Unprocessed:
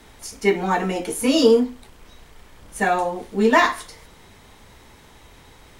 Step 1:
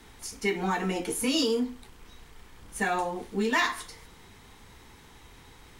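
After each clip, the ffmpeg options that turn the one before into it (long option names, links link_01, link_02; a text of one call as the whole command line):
ffmpeg -i in.wav -filter_complex "[0:a]equalizer=frequency=600:width=4.6:gain=-9,acrossover=split=1900[link_01][link_02];[link_01]alimiter=limit=-16.5dB:level=0:latency=1:release=165[link_03];[link_03][link_02]amix=inputs=2:normalize=0,volume=-3.5dB" out.wav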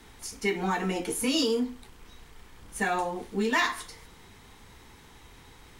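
ffmpeg -i in.wav -af anull out.wav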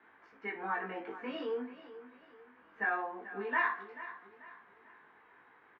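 ffmpeg -i in.wav -af "highpass=320,equalizer=frequency=640:width_type=q:width=4:gain=3,equalizer=frequency=1100:width_type=q:width=4:gain=6,equalizer=frequency=1600:width_type=q:width=4:gain=10,lowpass=frequency=2300:width=0.5412,lowpass=frequency=2300:width=1.3066,flanger=delay=18:depth=2.4:speed=0.43,aecho=1:1:438|876|1314|1752:0.188|0.0716|0.0272|0.0103,volume=-6.5dB" out.wav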